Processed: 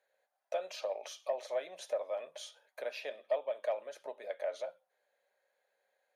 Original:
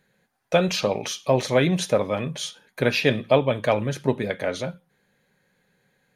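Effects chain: compressor 2:1, threshold -31 dBFS, peak gain reduction 10.5 dB; ladder high-pass 560 Hz, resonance 70%; soft clip -18.5 dBFS, distortion -23 dB; gain -2.5 dB

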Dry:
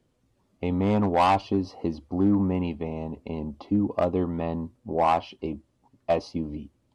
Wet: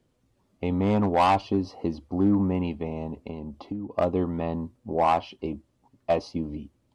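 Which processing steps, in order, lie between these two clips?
3.15–3.98 compressor 6:1, threshold -31 dBFS, peak gain reduction 11.5 dB

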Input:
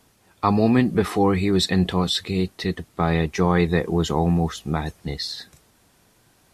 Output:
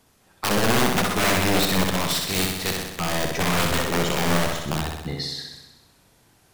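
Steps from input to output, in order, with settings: 2.08–2.85 spectral contrast lowered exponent 0.5; wrapped overs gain 14.5 dB; flutter echo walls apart 10.9 m, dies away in 1 s; gain -2 dB

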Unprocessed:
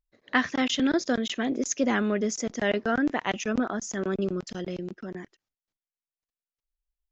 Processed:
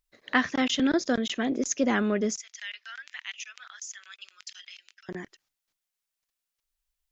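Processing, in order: 2.37–5.09 ladder high-pass 1800 Hz, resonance 25%; mismatched tape noise reduction encoder only

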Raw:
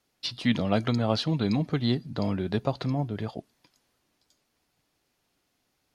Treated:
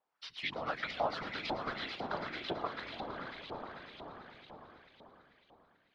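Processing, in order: Doppler pass-by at 1.61, 17 m/s, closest 9.1 m; compressor, threshold -30 dBFS, peak gain reduction 9.5 dB; swelling echo 0.11 s, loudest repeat 5, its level -10.5 dB; LFO band-pass saw up 2 Hz 770–3000 Hz; whisperiser; gain +9.5 dB

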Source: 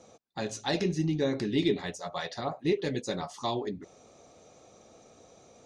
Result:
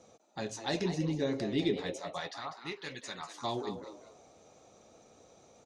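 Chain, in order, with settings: 2.29–3.36 resonant low shelf 750 Hz -11 dB, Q 1.5; frequency-shifting echo 0.196 s, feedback 31%, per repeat +120 Hz, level -10 dB; gain -4 dB

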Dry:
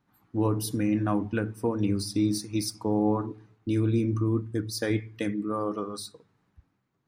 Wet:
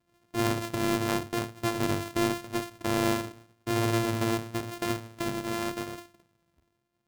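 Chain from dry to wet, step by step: sample sorter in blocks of 128 samples; vibrato 0.89 Hz 14 cents; ending taper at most 160 dB/s; gain -2 dB

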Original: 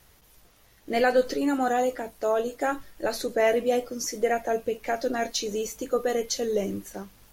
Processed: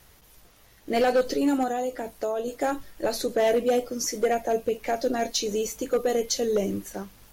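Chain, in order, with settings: dynamic EQ 1500 Hz, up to -6 dB, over -39 dBFS, Q 1.1; 1.63–2.48 compressor, threshold -27 dBFS, peak gain reduction 6.5 dB; overloaded stage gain 19 dB; gain +2.5 dB

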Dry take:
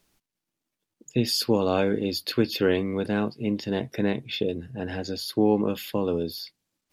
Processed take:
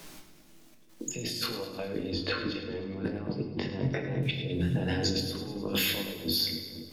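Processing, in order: 2.1–4.23 LPF 1600 Hz 12 dB/oct; limiter -19.5 dBFS, peak gain reduction 11 dB; negative-ratio compressor -36 dBFS, ratio -0.5; chorus 0.35 Hz, delay 19.5 ms, depth 3.2 ms; step gate "xxxxx.xxxxx." 101 bpm -12 dB; split-band echo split 660 Hz, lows 0.253 s, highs 0.104 s, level -11.5 dB; reverb RT60 0.75 s, pre-delay 6 ms, DRR 4.5 dB; three-band squash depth 40%; gain +7 dB

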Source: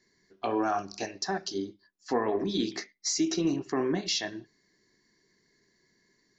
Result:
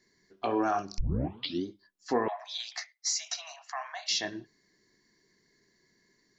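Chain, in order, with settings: 0.98 tape start 0.66 s; 2.28–4.11 steep high-pass 640 Hz 96 dB/oct

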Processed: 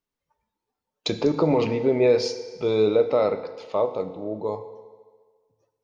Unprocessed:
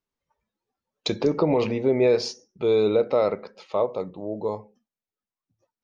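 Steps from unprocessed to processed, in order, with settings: FDN reverb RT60 1.6 s, low-frequency decay 0.75×, high-frequency decay 0.9×, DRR 9.5 dB

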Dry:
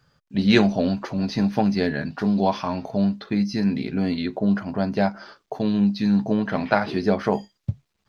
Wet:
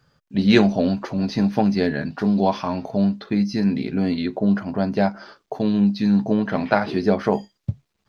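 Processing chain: bell 340 Hz +2.5 dB 2.3 oct

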